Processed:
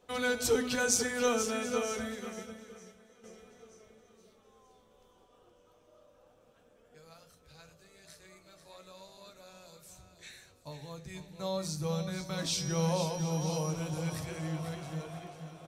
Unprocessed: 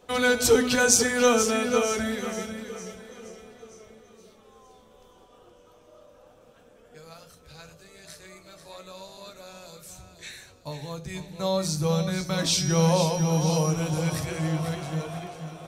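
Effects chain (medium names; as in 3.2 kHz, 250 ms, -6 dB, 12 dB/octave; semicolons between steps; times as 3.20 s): delay 730 ms -18.5 dB; 1.99–3.24 s: upward expansion 1.5:1, over -43 dBFS; trim -9 dB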